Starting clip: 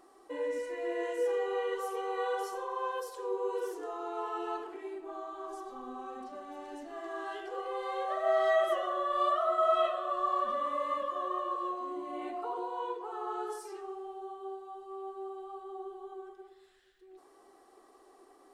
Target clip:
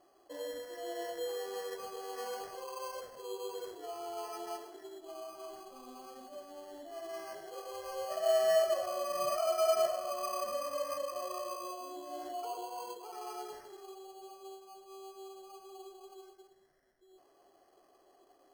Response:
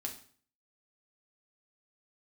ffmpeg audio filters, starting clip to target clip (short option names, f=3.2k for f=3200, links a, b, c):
-af "acrusher=samples=12:mix=1:aa=0.000001,superequalizer=8b=2.51:12b=0.355,volume=-7.5dB"